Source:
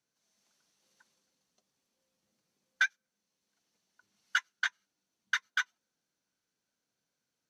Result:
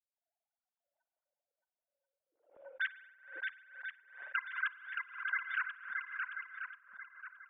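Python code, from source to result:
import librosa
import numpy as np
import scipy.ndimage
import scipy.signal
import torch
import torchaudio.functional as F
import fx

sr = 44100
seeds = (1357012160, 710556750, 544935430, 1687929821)

y = fx.sine_speech(x, sr)
y = fx.level_steps(y, sr, step_db=19)
y = fx.echo_swing(y, sr, ms=1036, ratio=1.5, feedback_pct=38, wet_db=-4.0)
y = fx.rev_spring(y, sr, rt60_s=1.6, pass_ms=(44,), chirp_ms=65, drr_db=15.5)
y = fx.env_lowpass(y, sr, base_hz=540.0, full_db=-41.5)
y = fx.pre_swell(y, sr, db_per_s=110.0)
y = y * 10.0 ** (5.5 / 20.0)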